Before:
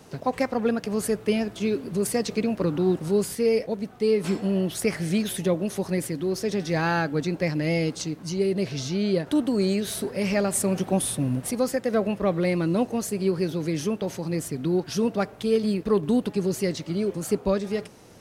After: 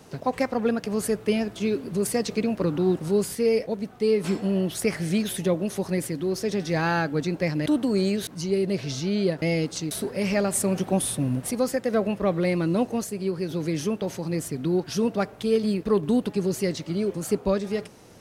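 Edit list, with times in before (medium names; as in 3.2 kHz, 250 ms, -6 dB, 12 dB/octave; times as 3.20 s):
7.66–8.15 s: swap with 9.30–9.91 s
13.04–13.50 s: gain -3.5 dB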